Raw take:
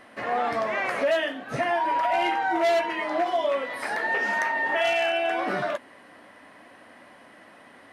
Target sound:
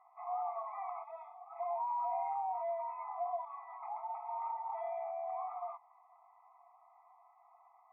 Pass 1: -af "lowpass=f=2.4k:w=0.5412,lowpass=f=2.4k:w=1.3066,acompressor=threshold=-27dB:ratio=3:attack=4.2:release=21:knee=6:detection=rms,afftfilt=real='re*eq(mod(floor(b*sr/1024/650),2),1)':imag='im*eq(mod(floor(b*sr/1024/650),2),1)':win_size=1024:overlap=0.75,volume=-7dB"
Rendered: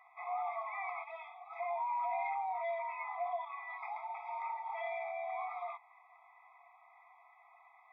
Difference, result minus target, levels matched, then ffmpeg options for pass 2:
2000 Hz band +17.0 dB
-af "lowpass=f=1.2k:w=0.5412,lowpass=f=1.2k:w=1.3066,acompressor=threshold=-27dB:ratio=3:attack=4.2:release=21:knee=6:detection=rms,afftfilt=real='re*eq(mod(floor(b*sr/1024/650),2),1)':imag='im*eq(mod(floor(b*sr/1024/650),2),1)':win_size=1024:overlap=0.75,volume=-7dB"

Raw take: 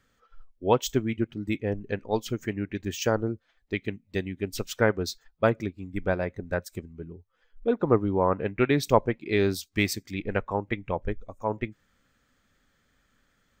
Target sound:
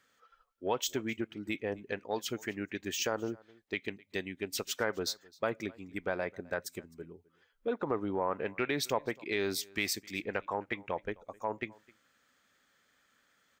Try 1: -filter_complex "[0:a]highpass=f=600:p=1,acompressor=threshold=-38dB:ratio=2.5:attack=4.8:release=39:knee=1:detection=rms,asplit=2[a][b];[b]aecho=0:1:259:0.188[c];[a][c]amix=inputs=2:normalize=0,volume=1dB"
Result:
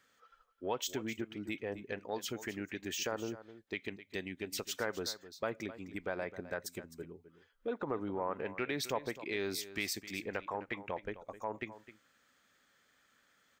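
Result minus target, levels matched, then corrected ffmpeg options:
echo-to-direct +10 dB; compressor: peak gain reduction +4 dB
-filter_complex "[0:a]highpass=f=600:p=1,acompressor=threshold=-31dB:ratio=2.5:attack=4.8:release=39:knee=1:detection=rms,asplit=2[a][b];[b]aecho=0:1:259:0.0596[c];[a][c]amix=inputs=2:normalize=0,volume=1dB"

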